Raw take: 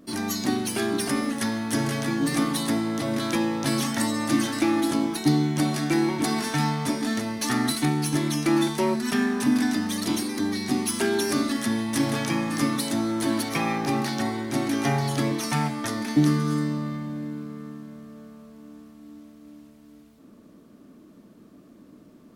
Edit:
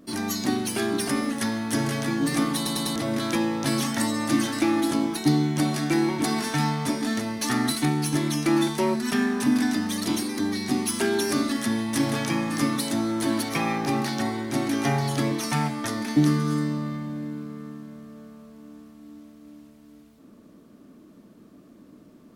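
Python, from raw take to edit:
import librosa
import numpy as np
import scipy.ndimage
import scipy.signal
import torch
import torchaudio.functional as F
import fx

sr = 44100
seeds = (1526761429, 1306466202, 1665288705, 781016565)

y = fx.edit(x, sr, fx.stutter_over(start_s=2.56, slice_s=0.1, count=4), tone=tone)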